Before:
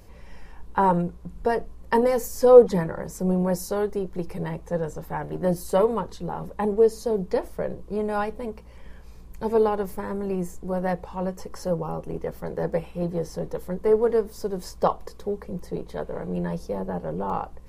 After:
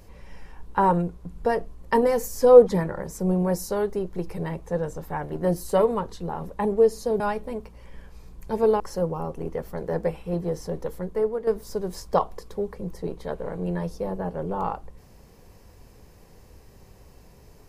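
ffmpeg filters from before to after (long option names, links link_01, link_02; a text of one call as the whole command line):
ffmpeg -i in.wav -filter_complex "[0:a]asplit=4[link_01][link_02][link_03][link_04];[link_01]atrim=end=7.202[link_05];[link_02]atrim=start=8.118:end=9.722[link_06];[link_03]atrim=start=11.488:end=14.16,asetpts=PTS-STARTPTS,afade=type=out:start_time=2.112:duration=0.56:silence=0.266073[link_07];[link_04]atrim=start=14.16,asetpts=PTS-STARTPTS,afade=type=in:duration=0.004:curve=hsin:silence=0.266073[link_08];[link_05][link_06]acrossfade=duration=0.004:curve1=hsin:curve2=hsin[link_09];[link_07][link_08]concat=n=2:v=0:a=1[link_10];[link_09][link_10]acrossfade=duration=0.004:curve1=hsin:curve2=hsin" out.wav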